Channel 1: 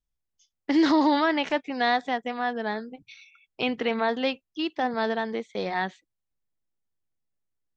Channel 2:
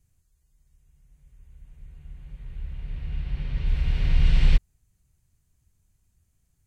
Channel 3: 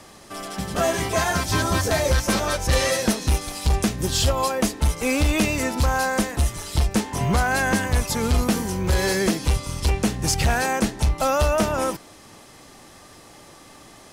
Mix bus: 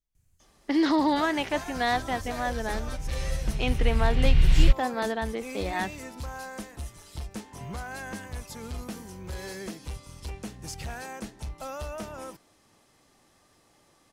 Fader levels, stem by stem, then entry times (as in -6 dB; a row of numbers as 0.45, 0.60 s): -2.5, 0.0, -16.5 dB; 0.00, 0.15, 0.40 s